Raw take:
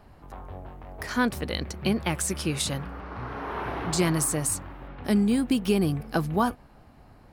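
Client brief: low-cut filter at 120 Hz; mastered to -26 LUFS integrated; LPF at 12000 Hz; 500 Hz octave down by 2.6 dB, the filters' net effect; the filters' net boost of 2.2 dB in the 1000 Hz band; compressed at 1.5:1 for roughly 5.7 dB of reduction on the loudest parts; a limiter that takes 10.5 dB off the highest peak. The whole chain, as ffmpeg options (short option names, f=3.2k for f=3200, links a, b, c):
-af "highpass=120,lowpass=12k,equalizer=f=500:t=o:g=-4.5,equalizer=f=1k:t=o:g=4,acompressor=threshold=-34dB:ratio=1.5,volume=8.5dB,alimiter=limit=-15dB:level=0:latency=1"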